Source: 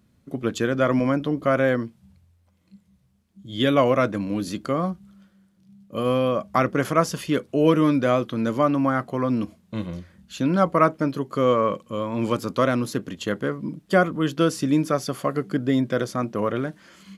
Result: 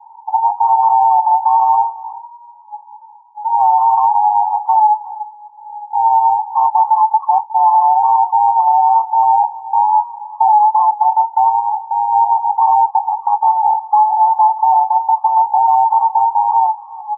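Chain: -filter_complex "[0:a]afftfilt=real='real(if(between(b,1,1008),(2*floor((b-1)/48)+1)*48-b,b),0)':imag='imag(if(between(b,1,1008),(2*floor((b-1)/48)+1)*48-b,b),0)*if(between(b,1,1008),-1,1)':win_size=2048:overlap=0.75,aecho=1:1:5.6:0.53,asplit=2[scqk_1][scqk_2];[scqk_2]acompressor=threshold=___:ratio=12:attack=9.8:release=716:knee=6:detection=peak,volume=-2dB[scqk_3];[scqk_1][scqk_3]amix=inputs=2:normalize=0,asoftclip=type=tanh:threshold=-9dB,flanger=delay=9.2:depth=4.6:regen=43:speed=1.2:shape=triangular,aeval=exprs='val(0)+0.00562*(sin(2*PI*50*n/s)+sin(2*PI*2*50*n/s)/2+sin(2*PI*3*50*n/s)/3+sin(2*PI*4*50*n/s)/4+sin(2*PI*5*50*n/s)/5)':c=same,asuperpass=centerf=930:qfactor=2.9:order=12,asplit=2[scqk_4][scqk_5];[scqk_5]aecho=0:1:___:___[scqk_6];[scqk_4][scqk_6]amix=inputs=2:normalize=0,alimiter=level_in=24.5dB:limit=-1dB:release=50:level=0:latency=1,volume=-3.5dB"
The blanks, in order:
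-28dB, 360, 0.1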